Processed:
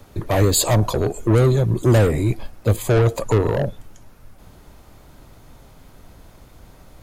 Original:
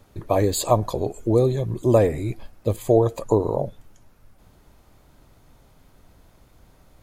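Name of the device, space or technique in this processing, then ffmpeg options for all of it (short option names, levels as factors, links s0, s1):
one-band saturation: -filter_complex "[0:a]acrossover=split=200|4400[s0][s1][s2];[s1]asoftclip=type=tanh:threshold=0.0596[s3];[s0][s3][s2]amix=inputs=3:normalize=0,volume=2.51"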